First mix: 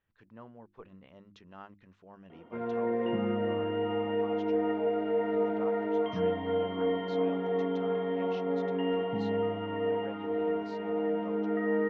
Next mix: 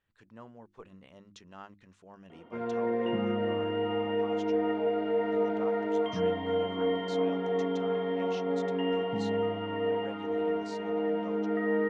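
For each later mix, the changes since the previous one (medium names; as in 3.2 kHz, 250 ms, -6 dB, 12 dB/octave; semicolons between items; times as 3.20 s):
master: remove distance through air 200 m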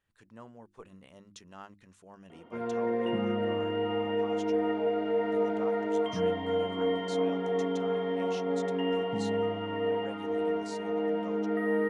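master: remove low-pass 5.2 kHz 12 dB/octave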